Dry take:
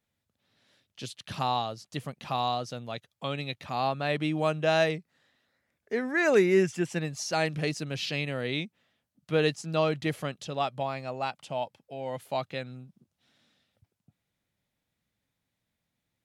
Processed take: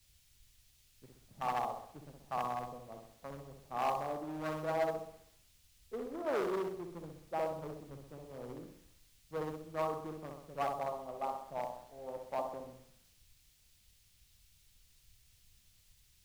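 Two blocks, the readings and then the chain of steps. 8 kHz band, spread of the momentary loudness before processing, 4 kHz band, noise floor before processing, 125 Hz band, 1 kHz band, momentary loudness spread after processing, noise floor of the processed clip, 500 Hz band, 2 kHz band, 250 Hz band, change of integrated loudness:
-15.5 dB, 14 LU, -20.0 dB, -84 dBFS, -16.0 dB, -5.5 dB, 15 LU, -68 dBFS, -10.0 dB, -16.5 dB, -13.0 dB, -10.0 dB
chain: local Wiener filter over 41 samples; compression 2:1, threshold -36 dBFS, peak gain reduction 10.5 dB; Chebyshev low-pass 1.2 kHz, order 6; flutter echo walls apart 11.1 m, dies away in 1 s; overload inside the chain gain 30 dB; high-pass 750 Hz 6 dB/octave; added noise pink -62 dBFS; three bands expanded up and down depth 100%; trim +2.5 dB

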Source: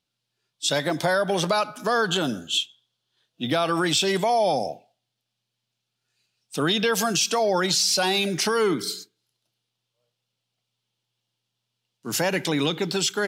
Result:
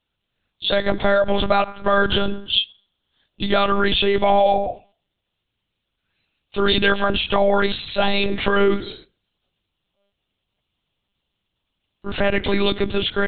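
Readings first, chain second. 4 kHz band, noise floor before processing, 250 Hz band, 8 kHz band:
+2.0 dB, -82 dBFS, +3.0 dB, under -40 dB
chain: monotone LPC vocoder at 8 kHz 200 Hz; trim +5.5 dB

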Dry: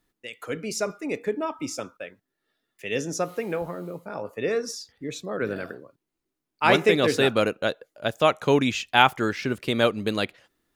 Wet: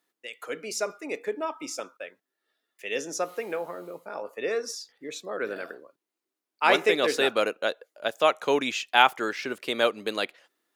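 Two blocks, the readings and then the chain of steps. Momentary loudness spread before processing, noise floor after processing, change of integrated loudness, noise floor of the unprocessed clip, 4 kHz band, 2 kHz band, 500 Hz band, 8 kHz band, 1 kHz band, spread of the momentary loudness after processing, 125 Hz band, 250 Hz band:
16 LU, under -85 dBFS, -2.0 dB, -83 dBFS, -1.0 dB, -1.0 dB, -2.5 dB, -1.0 dB, -1.0 dB, 17 LU, -18.0 dB, -8.0 dB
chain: high-pass 390 Hz 12 dB/octave; trim -1 dB

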